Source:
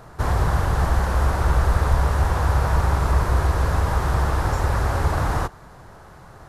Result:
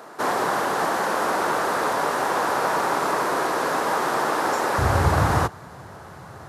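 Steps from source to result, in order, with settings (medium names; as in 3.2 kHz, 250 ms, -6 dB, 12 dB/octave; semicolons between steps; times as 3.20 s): short-mantissa float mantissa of 8-bit; high-pass 250 Hz 24 dB/octave, from 4.78 s 81 Hz; trim +4.5 dB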